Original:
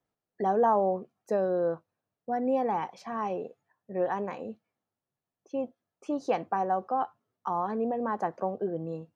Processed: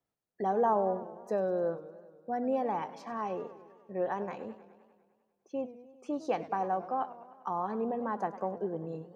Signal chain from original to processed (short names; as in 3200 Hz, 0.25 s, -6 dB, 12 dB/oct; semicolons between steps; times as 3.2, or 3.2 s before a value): warbling echo 0.1 s, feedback 67%, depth 152 cents, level -15.5 dB; gain -3.5 dB